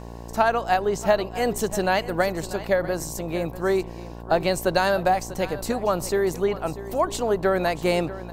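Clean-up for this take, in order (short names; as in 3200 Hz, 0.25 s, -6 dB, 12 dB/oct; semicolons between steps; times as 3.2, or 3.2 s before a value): de-click; de-hum 58.3 Hz, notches 19; inverse comb 0.642 s -15.5 dB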